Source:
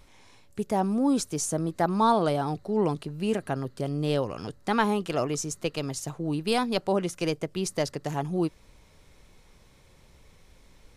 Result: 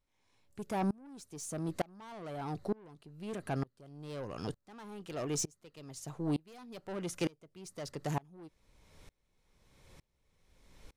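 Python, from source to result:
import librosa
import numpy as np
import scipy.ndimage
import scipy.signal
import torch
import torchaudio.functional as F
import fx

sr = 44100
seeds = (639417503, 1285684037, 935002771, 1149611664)

y = 10.0 ** (-26.0 / 20.0) * np.tanh(x / 10.0 ** (-26.0 / 20.0))
y = fx.tremolo_decay(y, sr, direction='swelling', hz=1.1, depth_db=30)
y = y * 10.0 ** (1.5 / 20.0)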